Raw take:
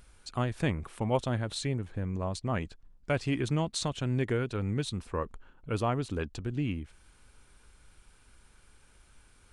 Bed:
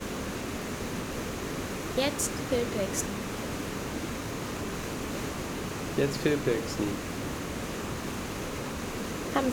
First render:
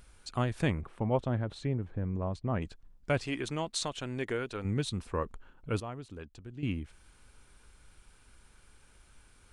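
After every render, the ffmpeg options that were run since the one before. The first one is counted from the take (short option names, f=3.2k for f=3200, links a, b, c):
-filter_complex "[0:a]asettb=1/sr,asplit=3[a][b][c];[a]atrim=end=0.814[d];[b]atrim=start=0.81:end=2.62,asetpts=PTS-STARTPTS,afade=t=in:d=0.004:c=qsin,afade=t=out:st=1.806:d=0.004:c=qsin,lowpass=f=1.1k:p=1[e];[c]atrim=start=2.616[f];[d][e]acrossfade=d=0.004:c1=hsin:c2=qsin[g];[g][f]acrossfade=d=0.004:c1=qsin:c2=hsin,asettb=1/sr,asplit=3[h][i][j];[h]atrim=end=3.264[k];[i]atrim=start=3.26:end=4.65,asetpts=PTS-STARTPTS,afade=t=in:d=0.004:c=qsin,afade=t=out:st=1.386:d=0.004:c=qsin,equalizer=f=100:t=o:w=2.7:g=-11.5[l];[j]atrim=start=4.646[m];[k][l]acrossfade=d=0.004:c1=hsin:c2=qsin[n];[n][m]acrossfade=d=0.004:c1=qsin:c2=hsin,asplit=3[o][p][q];[o]atrim=end=5.802[r];[p]atrim=start=5.798:end=6.632,asetpts=PTS-STARTPTS,volume=-11.5dB[s];[q]atrim=start=6.628[t];[r][s]acrossfade=d=0.004:c1=hsin:c2=hsin[u];[u][t]acrossfade=d=0.004:c1=hsin:c2=hsin"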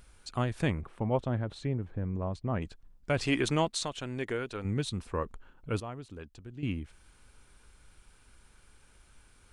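-filter_complex "[0:a]asettb=1/sr,asplit=3[a][b][c];[a]atrim=end=3.184[d];[b]atrim=start=3.18:end=3.68,asetpts=PTS-STARTPTS,afade=t=in:d=0.004:c=qsin,afade=t=out:st=0.496:d=0.004:c=qsin,acontrast=77[e];[c]atrim=start=3.676[f];[d][e]acrossfade=d=0.004:c1=hsin:c2=qsin[g];[g][f]acrossfade=d=0.004:c1=qsin:c2=hsin"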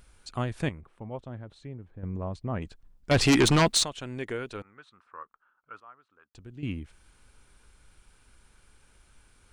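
-filter_complex "[0:a]asettb=1/sr,asplit=3[a][b][c];[a]atrim=end=3.114[d];[b]atrim=start=3.11:end=3.84,asetpts=PTS-STARTPTS,afade=t=in:d=0.004:c=qsin,afade=t=out:st=0.726:d=0.004:c=qsin,aeval=exprs='0.168*sin(PI/2*2.51*val(0)/0.168)':c=same[e];[c]atrim=start=3.836[f];[d][e]acrossfade=d=0.004:c1=hsin:c2=qsin[g];[g][f]acrossfade=d=0.004:c1=qsin:c2=hsin,asettb=1/sr,asplit=3[h][i][j];[h]atrim=end=4.624[k];[i]atrim=start=4.62:end=6.35,asetpts=PTS-STARTPTS,afade=t=in:d=0.004:c=qsin,afade=t=out:st=1.726:d=0.004:c=qsin,bandpass=f=1.3k:t=q:w=4.2[l];[j]atrim=start=6.346[m];[k][l]acrossfade=d=0.004:c1=hsin:c2=qsin[n];[n][m]acrossfade=d=0.004:c1=qsin:c2=hsin,asplit=3[o][p][q];[o]atrim=end=0.692[r];[p]atrim=start=0.688:end=2.032,asetpts=PTS-STARTPTS,volume=-9dB[s];[q]atrim=start=2.028[t];[r][s]acrossfade=d=0.004:c1=hsin:c2=hsin[u];[u][t]acrossfade=d=0.004:c1=hsin:c2=hsin"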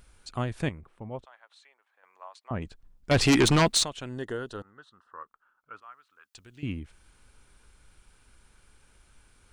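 -filter_complex "[0:a]asettb=1/sr,asplit=3[a][b][c];[a]atrim=end=1.254[d];[b]atrim=start=1.25:end=2.51,asetpts=PTS-STARTPTS,afade=t=in:d=0.004:c=qsin,afade=t=out:st=1.256:d=0.004:c=qsin,highpass=f=890:w=0.5412,highpass=f=890:w=1.3066[e];[c]atrim=start=2.506[f];[d][e]acrossfade=d=0.004:c1=hsin:c2=qsin[g];[g][f]acrossfade=d=0.004:c1=qsin:c2=hsin,asettb=1/sr,asplit=3[h][i][j];[h]atrim=end=4.094[k];[i]atrim=start=4.09:end=5.2,asetpts=PTS-STARTPTS,afade=t=in:d=0.004:c=qsin,afade=t=out:st=1.106:d=0.004:c=qsin,asuperstop=centerf=2300:order=4:qfactor=2.8[l];[j]atrim=start=5.196[m];[k][l]acrossfade=d=0.004:c1=hsin:c2=qsin[n];[n][m]acrossfade=d=0.004:c1=qsin:c2=hsin,asettb=1/sr,asplit=3[o][p][q];[o]atrim=end=5.824[r];[p]atrim=start=5.82:end=6.63,asetpts=PTS-STARTPTS,afade=t=in:d=0.004:c=qsin,afade=t=out:st=0.806:d=0.004:c=qsin,tiltshelf=f=890:g=-9[s];[q]atrim=start=6.626[t];[r][s]acrossfade=d=0.004:c1=hsin:c2=qsin[u];[u][t]acrossfade=d=0.004:c1=qsin:c2=hsin"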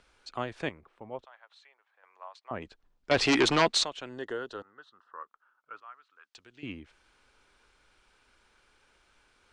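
-filter_complex "[0:a]lowpass=11k,acrossover=split=290 6400:gain=0.2 1 0.141[a][b][c];[a][b][c]amix=inputs=3:normalize=0"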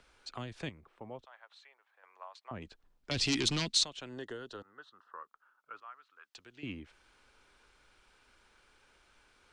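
-filter_complex "[0:a]acrossover=split=240|3000[a][b][c];[b]acompressor=threshold=-43dB:ratio=6[d];[a][d][c]amix=inputs=3:normalize=0"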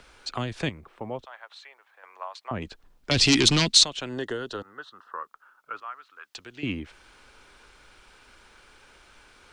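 -af "volume=11.5dB"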